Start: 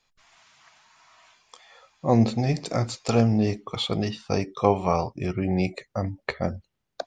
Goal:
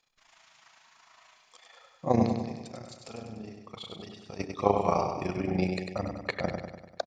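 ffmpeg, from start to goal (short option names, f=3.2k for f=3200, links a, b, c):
-filter_complex "[0:a]lowshelf=f=130:g=-9,asettb=1/sr,asplit=3[a][b][c];[a]atrim=end=2.264[d];[b]atrim=start=2.26:end=4.39,asetpts=PTS-STARTPTS,afade=t=in:d=0.004:c=qsin,afade=t=out:st=2.126:d=0.004:c=qsin,acompressor=threshold=-45dB:ratio=2.5[e];[c]atrim=start=4.386[f];[d][e]acrossfade=d=0.004:c1=hsin:c2=qsin[g];[g][f]acrossfade=d=0.004:c1=qsin:c2=hsin,tremolo=f=27:d=0.788,aecho=1:1:98|196|294|392|490|588|686:0.531|0.297|0.166|0.0932|0.0522|0.0292|0.0164"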